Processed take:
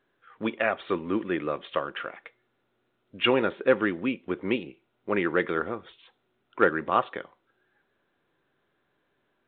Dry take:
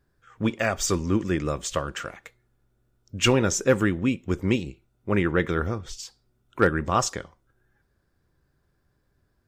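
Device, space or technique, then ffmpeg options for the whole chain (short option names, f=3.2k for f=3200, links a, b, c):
telephone: -af "highpass=300,lowpass=3.5k" -ar 8000 -c:a pcm_mulaw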